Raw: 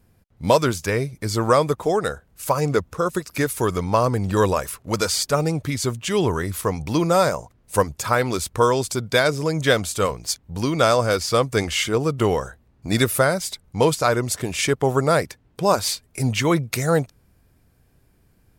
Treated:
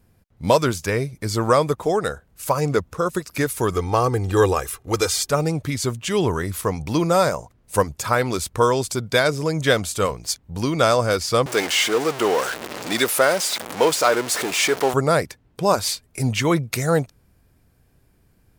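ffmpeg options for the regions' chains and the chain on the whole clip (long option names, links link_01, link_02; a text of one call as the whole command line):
ffmpeg -i in.wav -filter_complex "[0:a]asettb=1/sr,asplit=3[link_01][link_02][link_03];[link_01]atrim=end=3.734[link_04];[link_02]atrim=start=3.73:end=5.3,asetpts=PTS-STARTPTS,afade=type=in:duration=0.004:curve=qsin,afade=type=out:start_time=1.566:duration=0.004:curve=qsin,bandreject=frequency=4700:width=14,aecho=1:1:2.5:0.58,atrim=end_sample=69237[link_05];[link_03]atrim=start=5.296[link_06];[link_04][link_05]acrossfade=duration=0.004:curve1=hsin:curve2=qsin[link_07];[link_07][link_06]acrossfade=duration=0.004:curve1=qsin:curve2=hsin,asettb=1/sr,asplit=3[link_08][link_09][link_10];[link_08]atrim=end=11.464[link_11];[link_09]atrim=start=11.46:end=14.94,asetpts=PTS-STARTPTS,afade=type=in:duration=0.004:curve=qsin,afade=type=out:start_time=3.476:duration=0.004:curve=qsin,aeval=exprs='val(0)+0.5*0.112*sgn(val(0))':channel_layout=same,highpass=370,highshelf=frequency=9900:gain=-6[link_12];[link_10]atrim=start=14.936[link_13];[link_11][link_12]acrossfade=duration=0.004:curve1=hsin:curve2=qsin[link_14];[link_14][link_13]acrossfade=duration=0.004:curve1=qsin:curve2=hsin" out.wav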